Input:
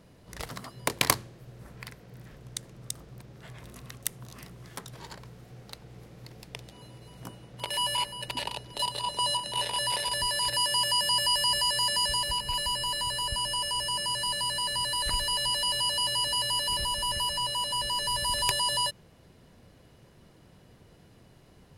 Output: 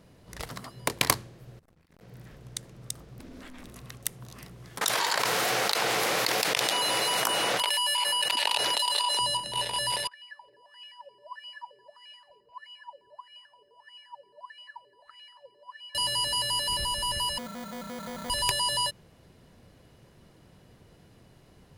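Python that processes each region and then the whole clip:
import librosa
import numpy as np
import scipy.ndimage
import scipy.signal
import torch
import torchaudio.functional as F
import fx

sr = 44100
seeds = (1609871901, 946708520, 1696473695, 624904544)

y = fx.chain(x, sr, fx.ring_mod(carrier_hz=42.0),
    fx.over_compress(threshold_db=-55.0, ratio=-0.5),
    fx.transformer_sat(knee_hz=730.0), at=(1.59, 2.01))
y = fx.chain(y, sr, fx.peak_eq(hz=690.0, db=-11.5, octaves=0.23),
    fx.ring_mod(carrier_hz=130.0),
    fx.env_flatten(amount_pct=100), at=(3.19, 3.68))
y = fx.chain(y, sr, fx.highpass(hz=800.0, slope=12),
    fx.env_flatten(amount_pct=100), at=(4.81, 9.19))
y = fx.chain(y, sr, fx.wah_lfo(hz=1.6, low_hz=390.0, high_hz=2600.0, q=18.0),
    fx.echo_single(ms=230, db=-22.5), at=(10.07, 15.95))
y = fx.chain(y, sr, fx.tone_stack(knobs='5-5-5'),
    fx.sample_hold(seeds[0], rate_hz=2700.0, jitter_pct=0),
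    fx.highpass(hz=53.0, slope=12), at=(17.38, 18.3))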